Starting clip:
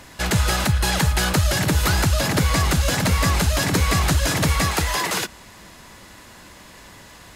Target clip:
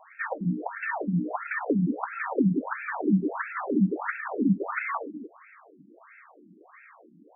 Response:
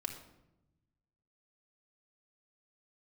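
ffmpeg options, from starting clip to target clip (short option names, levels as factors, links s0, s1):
-af "afreqshift=120,afftfilt=real='re*between(b*sr/1024,230*pow(1900/230,0.5+0.5*sin(2*PI*1.5*pts/sr))/1.41,230*pow(1900/230,0.5+0.5*sin(2*PI*1.5*pts/sr))*1.41)':imag='im*between(b*sr/1024,230*pow(1900/230,0.5+0.5*sin(2*PI*1.5*pts/sr))/1.41,230*pow(1900/230,0.5+0.5*sin(2*PI*1.5*pts/sr))*1.41)':win_size=1024:overlap=0.75,volume=0.841"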